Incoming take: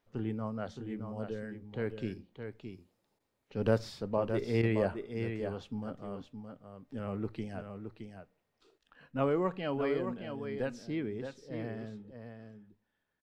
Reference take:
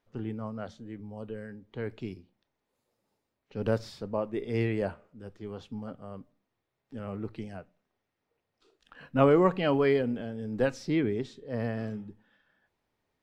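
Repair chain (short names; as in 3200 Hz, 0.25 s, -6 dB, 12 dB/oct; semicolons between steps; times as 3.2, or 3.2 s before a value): interpolate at 3.19/4.62, 10 ms; inverse comb 0.618 s -7.5 dB; gain 0 dB, from 8.78 s +8.5 dB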